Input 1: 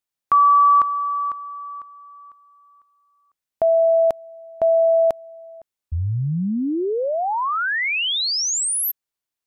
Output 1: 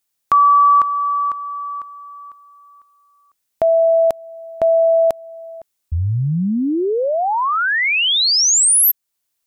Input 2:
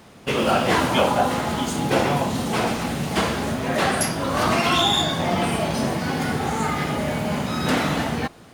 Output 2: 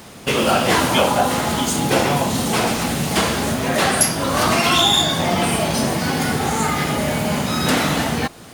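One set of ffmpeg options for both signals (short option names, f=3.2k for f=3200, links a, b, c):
-filter_complex "[0:a]highshelf=f=4.5k:g=8.5,asplit=2[a][b];[b]acompressor=threshold=-26dB:ratio=6:attack=6.5:release=347:knee=6:detection=rms,volume=1dB[c];[a][c]amix=inputs=2:normalize=0"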